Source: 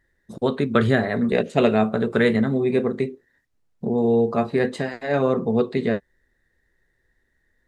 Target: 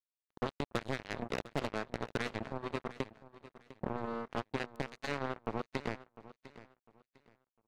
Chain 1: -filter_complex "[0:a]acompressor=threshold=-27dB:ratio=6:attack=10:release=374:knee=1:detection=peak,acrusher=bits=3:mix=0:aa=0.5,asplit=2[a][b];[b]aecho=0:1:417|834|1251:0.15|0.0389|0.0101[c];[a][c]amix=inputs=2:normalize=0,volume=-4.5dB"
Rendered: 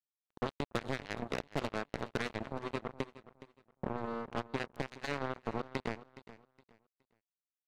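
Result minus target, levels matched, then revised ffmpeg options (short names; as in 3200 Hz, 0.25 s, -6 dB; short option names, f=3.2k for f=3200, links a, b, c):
echo 0.285 s early
-filter_complex "[0:a]acompressor=threshold=-27dB:ratio=6:attack=10:release=374:knee=1:detection=peak,acrusher=bits=3:mix=0:aa=0.5,asplit=2[a][b];[b]aecho=0:1:702|1404|2106:0.15|0.0389|0.0101[c];[a][c]amix=inputs=2:normalize=0,volume=-4.5dB"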